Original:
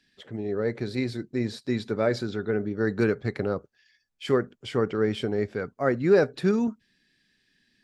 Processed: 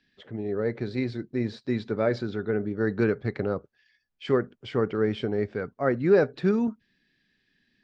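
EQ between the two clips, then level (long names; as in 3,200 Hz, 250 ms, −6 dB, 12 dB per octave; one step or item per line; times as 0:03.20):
high-frequency loss of the air 150 metres
0.0 dB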